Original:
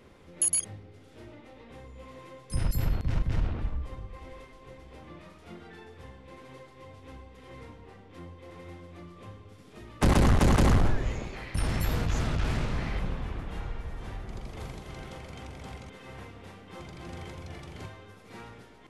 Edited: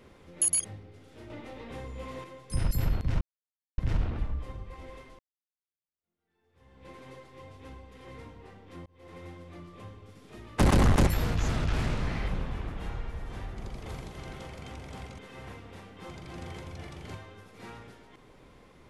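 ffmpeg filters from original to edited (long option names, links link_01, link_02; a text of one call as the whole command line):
ffmpeg -i in.wav -filter_complex "[0:a]asplit=7[link_01][link_02][link_03][link_04][link_05][link_06][link_07];[link_01]atrim=end=1.302[link_08];[link_02]atrim=start=1.298:end=2.242,asetpts=PTS-STARTPTS,volume=6.5dB[link_09];[link_03]atrim=start=2.238:end=3.21,asetpts=PTS-STARTPTS,afade=type=out:start_time=0.968:duration=0.004:curve=hsin,apad=pad_dur=0.57[link_10];[link_04]atrim=start=3.21:end=4.62,asetpts=PTS-STARTPTS,afade=type=in:duration=0.004:curve=hsin,afade=type=out:start_time=1.406:duration=0.004:curve=hsin[link_11];[link_05]atrim=start=4.62:end=8.29,asetpts=PTS-STARTPTS,afade=type=in:duration=1.67:curve=exp,afade=type=out:start_time=3.666:duration=0.004:curve=hsin[link_12];[link_06]atrim=start=8.29:end=10.502,asetpts=PTS-STARTPTS,afade=type=in:duration=0.3[link_13];[link_07]atrim=start=11.778[link_14];[link_08][link_09]acrossfade=duration=0.004:curve1=hsin:curve2=hsin[link_15];[link_10][link_11][link_12][link_13]concat=n=4:v=0:a=1[link_16];[link_15][link_16]acrossfade=duration=0.004:curve1=hsin:curve2=hsin[link_17];[link_17][link_14]acrossfade=duration=0.004:curve1=hsin:curve2=hsin" out.wav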